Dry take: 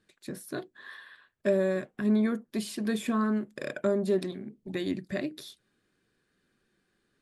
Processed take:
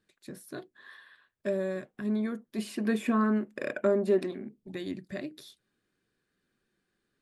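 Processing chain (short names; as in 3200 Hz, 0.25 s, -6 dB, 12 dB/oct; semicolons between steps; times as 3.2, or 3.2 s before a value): spectral gain 2.58–4.47, 200–3000 Hz +7 dB; gain -5 dB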